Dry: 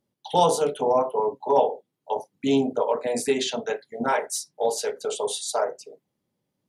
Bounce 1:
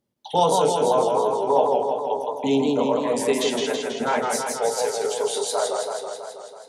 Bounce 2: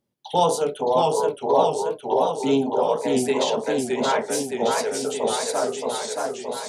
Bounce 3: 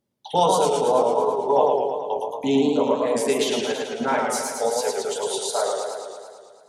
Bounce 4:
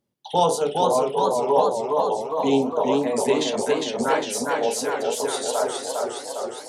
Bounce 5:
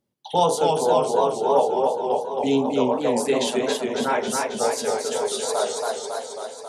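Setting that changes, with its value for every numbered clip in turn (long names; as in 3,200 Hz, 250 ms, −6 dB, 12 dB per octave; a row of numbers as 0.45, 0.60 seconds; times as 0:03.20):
feedback echo with a swinging delay time, delay time: 163, 620, 110, 409, 273 milliseconds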